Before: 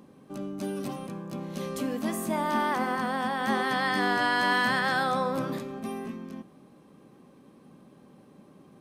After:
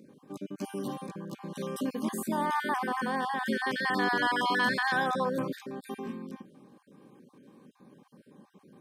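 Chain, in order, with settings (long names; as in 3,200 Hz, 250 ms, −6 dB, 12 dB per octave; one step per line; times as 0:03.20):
time-frequency cells dropped at random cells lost 30%
parametric band 66 Hz −11 dB 1 octave
notch comb filter 670 Hz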